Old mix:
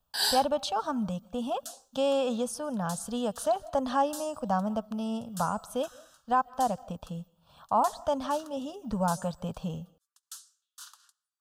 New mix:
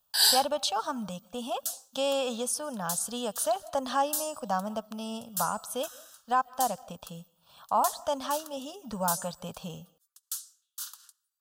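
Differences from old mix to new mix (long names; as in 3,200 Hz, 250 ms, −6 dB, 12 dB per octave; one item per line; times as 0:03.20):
second sound: remove low-pass filter 11,000 Hz 12 dB per octave
master: add spectral tilt +2.5 dB per octave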